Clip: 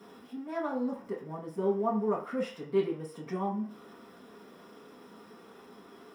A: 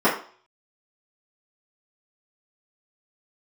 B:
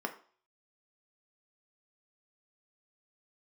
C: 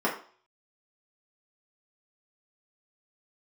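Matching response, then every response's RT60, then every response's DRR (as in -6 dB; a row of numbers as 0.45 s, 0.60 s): C; 0.45 s, 0.45 s, 0.45 s; -12.5 dB, 4.0 dB, -6.0 dB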